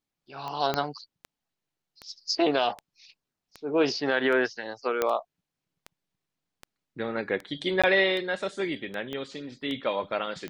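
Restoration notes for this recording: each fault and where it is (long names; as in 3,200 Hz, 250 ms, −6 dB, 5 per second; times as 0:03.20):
scratch tick 78 rpm −23 dBFS
0:00.74: click −12 dBFS
0:05.02: click −11 dBFS
0:07.82–0:07.84: drop-out 16 ms
0:09.13: click −22 dBFS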